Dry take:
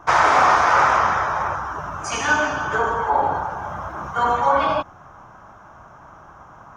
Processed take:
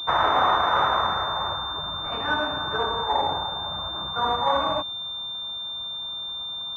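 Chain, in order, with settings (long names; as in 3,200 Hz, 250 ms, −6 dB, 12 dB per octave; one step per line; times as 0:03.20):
switching amplifier with a slow clock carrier 3,600 Hz
level −4.5 dB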